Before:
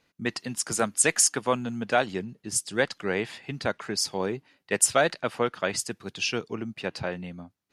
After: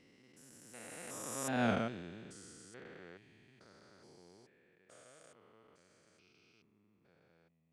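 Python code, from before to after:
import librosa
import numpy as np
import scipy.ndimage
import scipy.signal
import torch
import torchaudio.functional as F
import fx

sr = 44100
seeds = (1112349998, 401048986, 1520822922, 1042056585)

y = fx.spec_steps(x, sr, hold_ms=400)
y = fx.doppler_pass(y, sr, speed_mps=26, closest_m=2.4, pass_at_s=1.67)
y = F.gain(torch.from_numpy(y), 2.0).numpy()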